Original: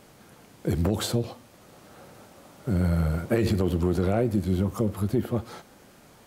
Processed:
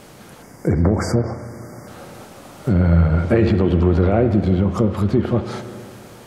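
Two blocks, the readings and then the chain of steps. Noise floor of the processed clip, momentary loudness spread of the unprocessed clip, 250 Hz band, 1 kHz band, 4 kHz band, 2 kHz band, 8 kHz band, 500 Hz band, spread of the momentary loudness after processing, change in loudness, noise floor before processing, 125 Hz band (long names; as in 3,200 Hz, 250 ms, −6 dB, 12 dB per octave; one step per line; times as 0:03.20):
−43 dBFS, 10 LU, +8.0 dB, +9.0 dB, +0.5 dB, +8.0 dB, can't be measured, +8.0 dB, 19 LU, +8.5 dB, −54 dBFS, +9.0 dB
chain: in parallel at −1 dB: brickwall limiter −21 dBFS, peak gain reduction 8.5 dB
on the sum: time-frequency box erased 0:00.42–0:01.88, 2,300–4,600 Hz
treble cut that deepens with the level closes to 2,700 Hz, closed at −16.5 dBFS
spring reverb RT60 2.5 s, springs 35/58 ms, chirp 50 ms, DRR 9 dB
level +4.5 dB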